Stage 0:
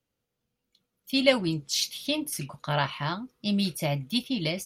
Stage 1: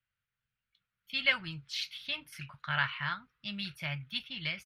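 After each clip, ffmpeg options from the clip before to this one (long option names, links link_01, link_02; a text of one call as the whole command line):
ffmpeg -i in.wav -af "firequalizer=gain_entry='entry(120,0);entry(260,-18);entry(420,-17);entry(1500,10);entry(6700,-15)':delay=0.05:min_phase=1,volume=-6dB" out.wav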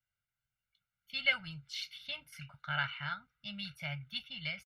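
ffmpeg -i in.wav -af "aecho=1:1:1.4:0.85,volume=-6.5dB" out.wav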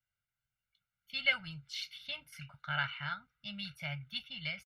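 ffmpeg -i in.wav -af anull out.wav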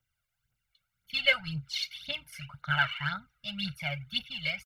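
ffmpeg -i in.wav -af "aphaser=in_gain=1:out_gain=1:delay=1.9:decay=0.62:speed=1.9:type=triangular,volume=4.5dB" out.wav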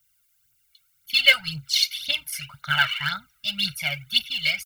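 ffmpeg -i in.wav -af "crystalizer=i=7:c=0" out.wav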